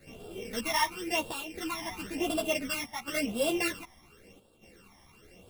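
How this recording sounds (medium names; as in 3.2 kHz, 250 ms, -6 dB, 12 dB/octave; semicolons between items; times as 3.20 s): a buzz of ramps at a fixed pitch in blocks of 16 samples; phasing stages 12, 0.95 Hz, lowest notch 450–2000 Hz; chopped level 0.65 Hz, depth 60%, duty 85%; a shimmering, thickened sound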